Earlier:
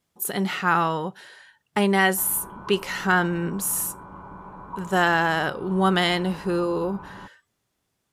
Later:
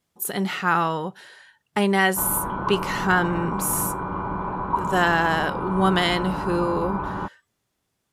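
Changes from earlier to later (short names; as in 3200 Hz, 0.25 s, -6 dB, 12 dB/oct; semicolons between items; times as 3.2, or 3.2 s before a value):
background +11.0 dB; reverb: on, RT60 1.5 s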